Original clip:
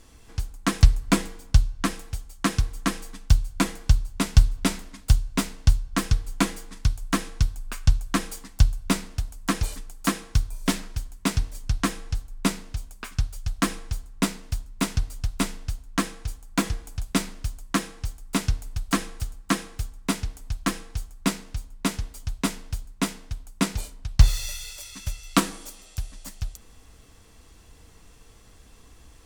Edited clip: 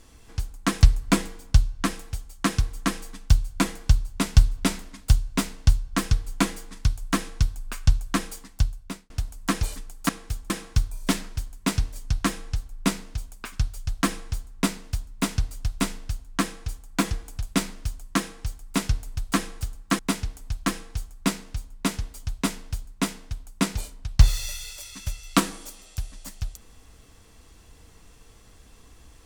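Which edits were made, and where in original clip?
7.88–9.1 fade out equal-power
19.58–19.99 move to 10.09

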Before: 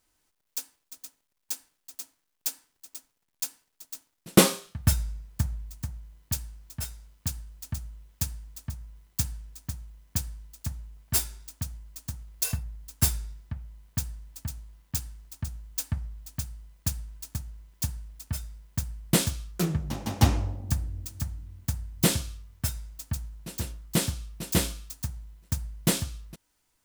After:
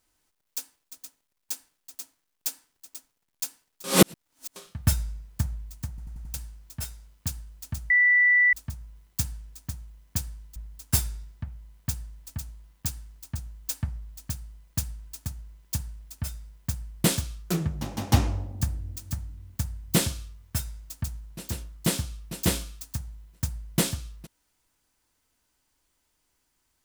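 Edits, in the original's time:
3.84–4.56 reverse
5.89 stutter in place 0.09 s, 5 plays
7.9–8.53 bleep 1970 Hz -16 dBFS
10.56–12.65 cut

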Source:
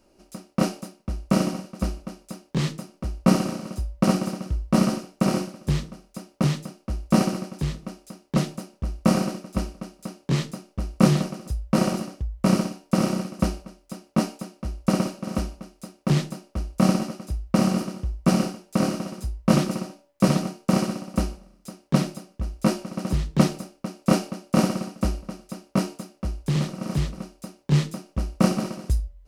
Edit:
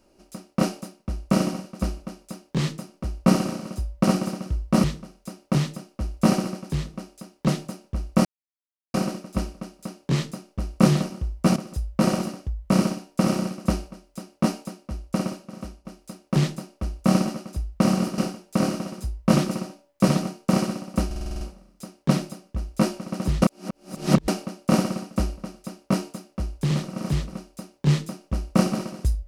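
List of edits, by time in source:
4.84–5.73 cut
9.14 insert silence 0.69 s
14.39–15.59 fade out, to -15.5 dB
17.92–18.38 move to 11.3
21.26 stutter 0.05 s, 8 plays
23.27–24.13 reverse

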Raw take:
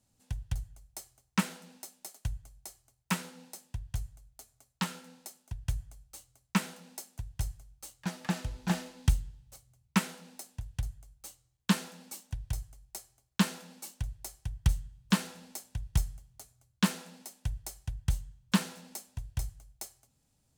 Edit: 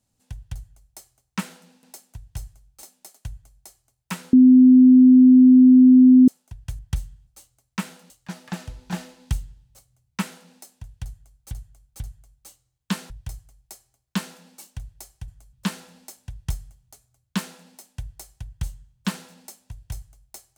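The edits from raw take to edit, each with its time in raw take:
3.33–5.28 bleep 255 Hz -7.5 dBFS
5.79–6.04 swap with 14.52–15
6.87–7.87 move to 1.83
10.79–11.28 loop, 3 plays
11.89–12.34 cut

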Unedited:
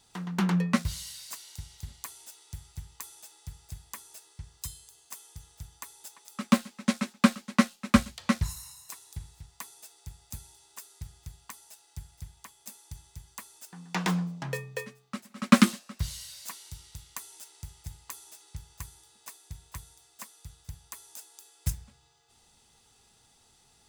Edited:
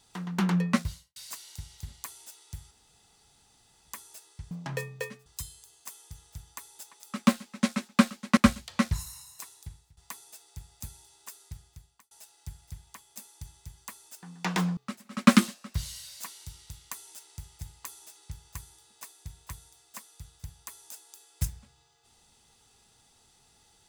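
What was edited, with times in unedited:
0.75–1.16 studio fade out
2.71–3.88 room tone
7.62–7.87 cut
9–9.47 fade out, to -19 dB
10.92–11.61 fade out
14.27–15.02 move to 4.51

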